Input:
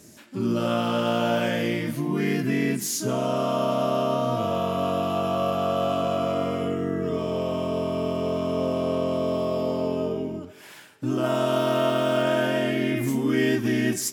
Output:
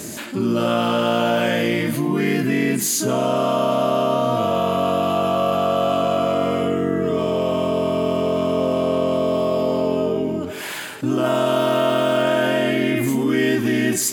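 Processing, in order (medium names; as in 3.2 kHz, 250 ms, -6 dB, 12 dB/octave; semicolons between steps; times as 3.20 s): bass shelf 120 Hz -8 dB; band-stop 5.5 kHz, Q 7.5; level flattener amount 50%; trim +4 dB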